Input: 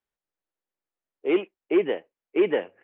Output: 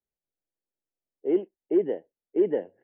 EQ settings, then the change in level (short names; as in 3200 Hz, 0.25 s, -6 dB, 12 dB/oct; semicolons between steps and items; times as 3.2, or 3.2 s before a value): running mean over 36 samples; 0.0 dB